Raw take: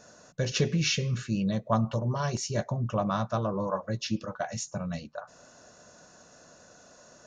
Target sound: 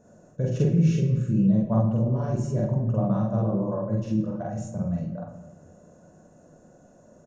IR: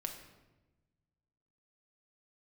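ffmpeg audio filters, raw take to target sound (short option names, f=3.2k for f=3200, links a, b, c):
-filter_complex "[0:a]firequalizer=gain_entry='entry(290,0);entry(1200,-15);entry(4600,-28);entry(7800,-10)':delay=0.05:min_phase=1,asplit=2[a][b];[1:a]atrim=start_sample=2205,adelay=46[c];[b][c]afir=irnorm=-1:irlink=0,volume=3dB[d];[a][d]amix=inputs=2:normalize=0,volume=2dB"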